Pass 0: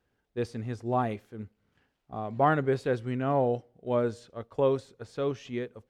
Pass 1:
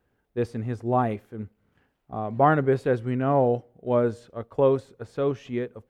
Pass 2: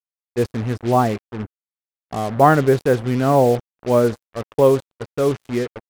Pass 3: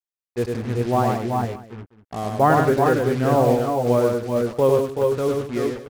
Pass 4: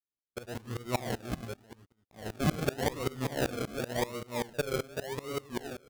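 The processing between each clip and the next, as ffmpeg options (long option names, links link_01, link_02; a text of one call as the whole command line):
ffmpeg -i in.wav -af "equalizer=frequency=5100:width=0.6:gain=-8,volume=5dB" out.wav
ffmpeg -i in.wav -af "acrusher=bits=5:mix=0:aa=0.5,volume=6.5dB" out.wav
ffmpeg -i in.wav -af "aecho=1:1:102|188|380|397|583:0.668|0.224|0.501|0.447|0.1,volume=-4.5dB" out.wav
ffmpeg -i in.wav -af "acrusher=samples=37:mix=1:aa=0.000001:lfo=1:lforange=22.2:lforate=0.89,aeval=exprs='val(0)*pow(10,-23*if(lt(mod(-5.2*n/s,1),2*abs(-5.2)/1000),1-mod(-5.2*n/s,1)/(2*abs(-5.2)/1000),(mod(-5.2*n/s,1)-2*abs(-5.2)/1000)/(1-2*abs(-5.2)/1000))/20)':channel_layout=same,volume=-7dB" out.wav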